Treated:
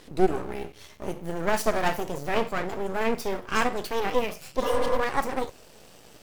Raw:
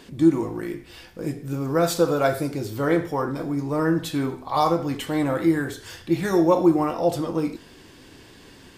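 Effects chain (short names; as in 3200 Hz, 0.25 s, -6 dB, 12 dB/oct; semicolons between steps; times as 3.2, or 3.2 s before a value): speed glide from 112% -> 170%; half-wave rectifier; spectral repair 4.65–4.94, 240–2700 Hz after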